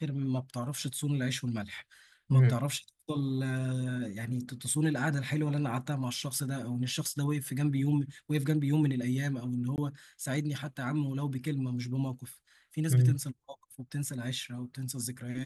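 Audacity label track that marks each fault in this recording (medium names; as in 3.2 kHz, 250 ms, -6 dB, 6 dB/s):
9.760000	9.780000	dropout 19 ms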